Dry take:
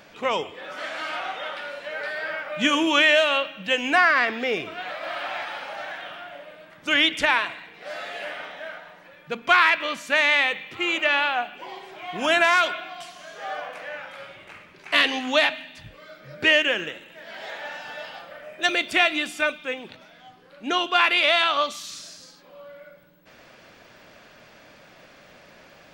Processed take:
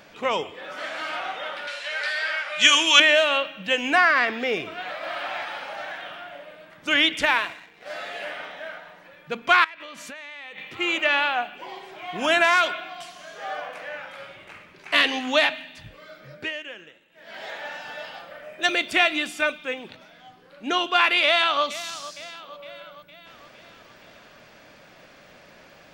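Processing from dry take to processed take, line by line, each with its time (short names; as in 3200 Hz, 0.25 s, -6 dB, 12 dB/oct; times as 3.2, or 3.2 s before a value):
1.67–3 weighting filter ITU-R 468
7.23–7.9 G.711 law mismatch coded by A
9.64–10.58 compressor 12:1, threshold -35 dBFS
16.25–17.37 dip -15.5 dB, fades 0.26 s
21.24–21.64 echo throw 0.46 s, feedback 60%, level -15.5 dB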